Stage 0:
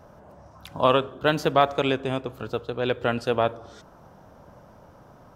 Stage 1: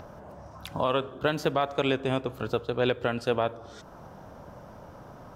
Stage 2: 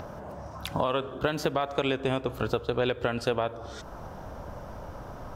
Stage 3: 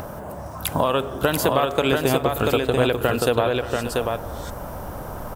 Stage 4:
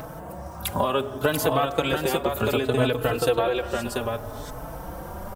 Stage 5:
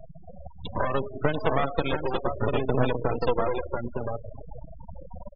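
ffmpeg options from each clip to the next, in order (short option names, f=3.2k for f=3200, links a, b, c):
-filter_complex "[0:a]acrossover=split=5600[a][b];[a]acompressor=mode=upward:threshold=-44dB:ratio=2.5[c];[c][b]amix=inputs=2:normalize=0,alimiter=limit=-16dB:level=0:latency=1:release=454,volume=2.5dB"
-af "asubboost=boost=3.5:cutoff=75,acompressor=threshold=-28dB:ratio=6,volume=5dB"
-af "aexciter=amount=6.1:drive=2.5:freq=7.8k,aecho=1:1:580|687:0.2|0.668,volume=6.5dB"
-filter_complex "[0:a]asplit=2[a][b];[b]adelay=4.1,afreqshift=0.65[c];[a][c]amix=inputs=2:normalize=1"
-af "aeval=exprs='max(val(0),0)':c=same,afftfilt=real='re*gte(hypot(re,im),0.0447)':imag='im*gte(hypot(re,im),0.0447)':win_size=1024:overlap=0.75,aresample=11025,aresample=44100,volume=2dB"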